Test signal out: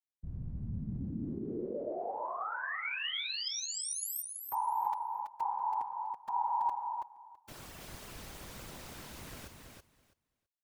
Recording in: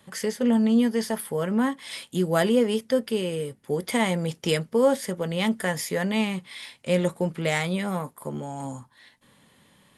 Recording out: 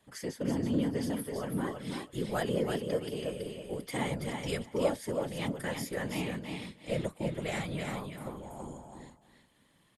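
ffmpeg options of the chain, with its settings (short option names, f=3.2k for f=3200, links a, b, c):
-af "afftfilt=real='hypot(re,im)*cos(2*PI*random(0))':imag='hypot(re,im)*sin(2*PI*random(1))':win_size=512:overlap=0.75,aecho=1:1:329|658|987:0.562|0.0844|0.0127,volume=-4.5dB"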